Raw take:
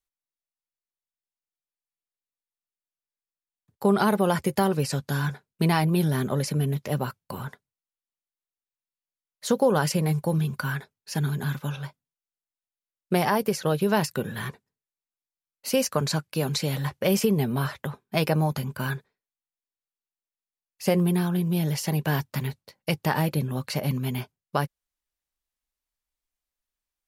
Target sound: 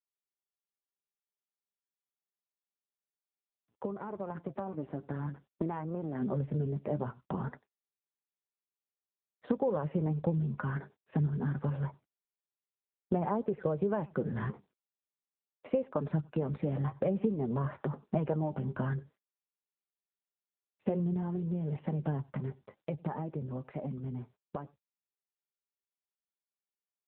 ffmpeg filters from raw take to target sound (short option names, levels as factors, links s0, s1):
-filter_complex "[0:a]asplit=2[s0][s1];[s1]adelay=93.29,volume=0.0447,highshelf=f=4000:g=-2.1[s2];[s0][s2]amix=inputs=2:normalize=0,asplit=3[s3][s4][s5];[s3]afade=t=out:st=3.96:d=0.02[s6];[s4]aeval=exprs='max(val(0),0)':c=same,afade=t=in:st=3.96:d=0.02,afade=t=out:st=6.21:d=0.02[s7];[s5]afade=t=in:st=6.21:d=0.02[s8];[s6][s7][s8]amix=inputs=3:normalize=0,highpass=150,lowshelf=f=190:g=5,flanger=delay=1.8:depth=8.5:regen=47:speed=0.51:shape=sinusoidal,acompressor=threshold=0.00891:ratio=4,lowpass=1100,dynaudnorm=f=640:g=17:m=3.16,agate=range=0.141:threshold=0.002:ratio=16:detection=peak,volume=1.19" -ar 8000 -c:a libopencore_amrnb -b:a 7950